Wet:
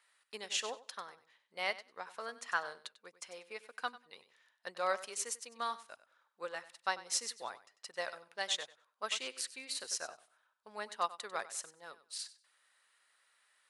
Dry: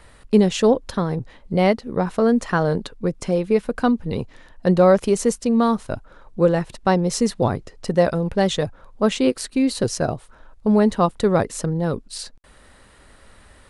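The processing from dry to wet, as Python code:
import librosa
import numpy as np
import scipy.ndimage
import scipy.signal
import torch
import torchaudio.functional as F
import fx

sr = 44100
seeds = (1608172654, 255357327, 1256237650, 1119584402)

p1 = scipy.signal.sosfilt(scipy.signal.butter(2, 1400.0, 'highpass', fs=sr, output='sos'), x)
p2 = p1 + fx.echo_feedback(p1, sr, ms=96, feedback_pct=23, wet_db=-11.5, dry=0)
p3 = fx.upward_expand(p2, sr, threshold_db=-46.0, expansion=1.5)
y = F.gain(torch.from_numpy(p3), -5.5).numpy()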